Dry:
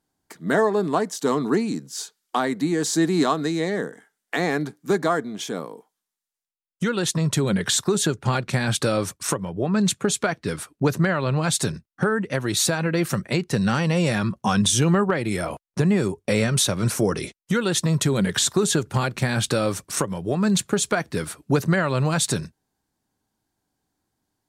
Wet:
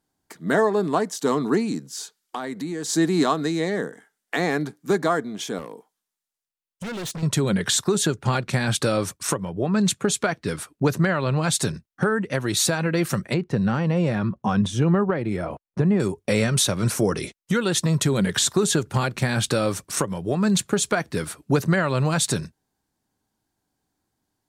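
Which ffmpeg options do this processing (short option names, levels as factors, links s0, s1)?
-filter_complex "[0:a]asplit=3[s0][s1][s2];[s0]afade=t=out:st=1.86:d=0.02[s3];[s1]acompressor=threshold=0.0355:ratio=2.5:attack=3.2:release=140:knee=1:detection=peak,afade=t=in:st=1.86:d=0.02,afade=t=out:st=2.88:d=0.02[s4];[s2]afade=t=in:st=2.88:d=0.02[s5];[s3][s4][s5]amix=inputs=3:normalize=0,asettb=1/sr,asplit=3[s6][s7][s8];[s6]atrim=end=5.584[s9];[s7]atrim=start=5.58:end=7.23,asetpts=PTS-STARTPTS,afade=t=in:d=0.004:c=qsin,afade=t=out:st=1.646:d=0.004:c=qsin,asoftclip=type=hard:threshold=0.0335[s10];[s8]atrim=start=7.226[s11];[s9][s10]acrossfade=d=0.004:c1=hsin:c2=qsin[s12];[s12][s11]acrossfade=d=0.004:c1=qsin:c2=hsin,asettb=1/sr,asplit=3[s13][s14][s15];[s13]atrim=end=13.344[s16];[s14]atrim=start=13.34:end=16,asetpts=PTS-STARTPTS,afade=t=in:d=0.004:c=qsin,afade=t=out:st=2.656:d=0.004:c=qsin,lowpass=f=1100:p=1[s17];[s15]atrim=start=15.996[s18];[s16][s17]acrossfade=d=0.004:c1=hsin:c2=qsin[s19];[s19][s18]acrossfade=d=0.004:c1=qsin:c2=hsin"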